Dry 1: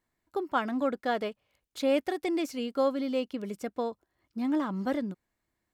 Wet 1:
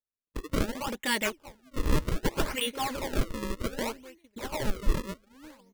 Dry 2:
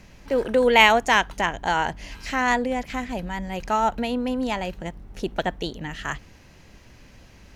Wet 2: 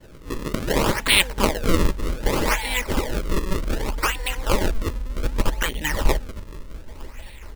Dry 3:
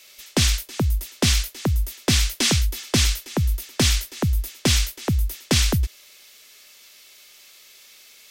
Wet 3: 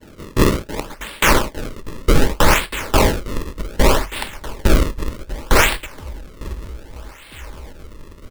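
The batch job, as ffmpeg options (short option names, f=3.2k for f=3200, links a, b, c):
-filter_complex "[0:a]asplit=2[a][b];[b]adelay=902,lowpass=f=3k:p=1,volume=-21.5dB,asplit=2[c][d];[d]adelay=902,lowpass=f=3k:p=1,volume=0.49,asplit=2[e][f];[f]adelay=902,lowpass=f=3k:p=1,volume=0.49[g];[a][c][e][g]amix=inputs=4:normalize=0,agate=range=-33dB:threshold=-45dB:ratio=3:detection=peak,afftfilt=real='re*lt(hypot(re,im),0.224)':imag='im*lt(hypot(re,im),0.224)':win_size=1024:overlap=0.75,firequalizer=gain_entry='entry(550,0);entry(870,4);entry(1300,-8);entry(1900,10);entry(2800,11);entry(4200,1);entry(8100,12);entry(12000,-26)':delay=0.05:min_phase=1,acrusher=samples=33:mix=1:aa=0.000001:lfo=1:lforange=52.8:lforate=0.65,asubboost=boost=6.5:cutoff=54,asuperstop=centerf=720:order=4:qfactor=6.7,alimiter=level_in=4.5dB:limit=-1dB:release=50:level=0:latency=1,volume=-1dB"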